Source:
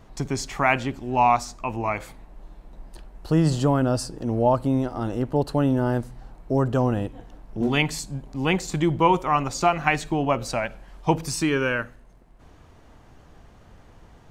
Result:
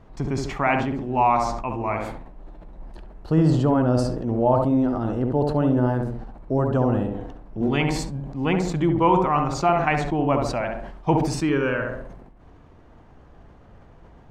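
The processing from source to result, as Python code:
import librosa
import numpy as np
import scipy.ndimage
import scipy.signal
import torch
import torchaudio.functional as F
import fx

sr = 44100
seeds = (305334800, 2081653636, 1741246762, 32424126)

y = fx.lowpass(x, sr, hz=1800.0, slope=6)
y = fx.echo_tape(y, sr, ms=68, feedback_pct=45, wet_db=-3.5, lp_hz=1100.0, drive_db=2.0, wow_cents=39)
y = fx.sustainer(y, sr, db_per_s=46.0)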